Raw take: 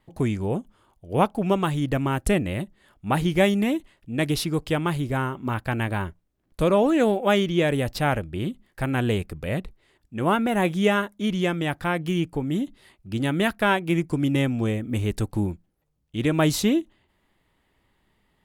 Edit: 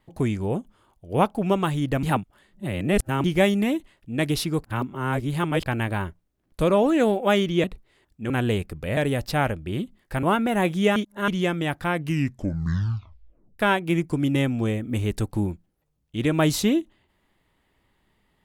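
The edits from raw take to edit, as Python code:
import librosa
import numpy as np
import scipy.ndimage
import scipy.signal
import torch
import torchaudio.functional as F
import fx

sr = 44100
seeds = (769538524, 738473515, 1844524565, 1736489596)

y = fx.edit(x, sr, fx.reverse_span(start_s=2.03, length_s=1.21),
    fx.reverse_span(start_s=4.64, length_s=1.02),
    fx.swap(start_s=7.64, length_s=1.26, other_s=9.57, other_length_s=0.66),
    fx.reverse_span(start_s=10.96, length_s=0.32),
    fx.tape_stop(start_s=11.94, length_s=1.65), tone=tone)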